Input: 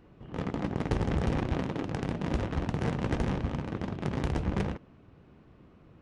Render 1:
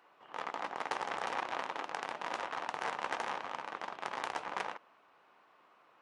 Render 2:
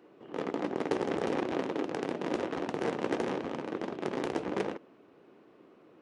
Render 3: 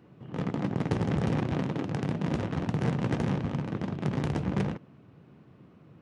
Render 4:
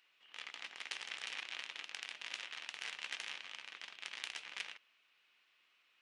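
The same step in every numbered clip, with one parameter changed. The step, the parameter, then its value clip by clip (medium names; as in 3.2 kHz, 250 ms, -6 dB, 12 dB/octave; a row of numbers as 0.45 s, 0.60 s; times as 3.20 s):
resonant high-pass, frequency: 920 Hz, 360 Hz, 130 Hz, 2.7 kHz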